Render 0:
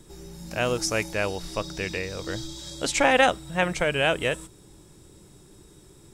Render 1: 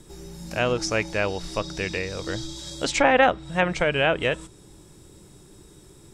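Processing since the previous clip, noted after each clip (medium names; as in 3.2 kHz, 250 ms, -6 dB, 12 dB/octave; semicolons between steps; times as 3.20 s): low-pass that closes with the level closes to 2.4 kHz, closed at -17.5 dBFS; trim +2 dB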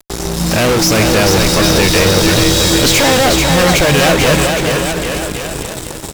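level rider gain up to 6 dB; fuzz box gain 41 dB, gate -39 dBFS; bouncing-ball echo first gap 440 ms, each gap 0.85×, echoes 5; trim +2.5 dB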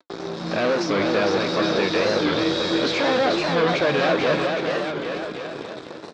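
flange 0.57 Hz, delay 4.5 ms, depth 9.4 ms, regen -71%; cabinet simulation 260–3900 Hz, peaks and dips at 860 Hz -4 dB, 2 kHz -5 dB, 2.9 kHz -9 dB; warped record 45 rpm, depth 160 cents; trim -2.5 dB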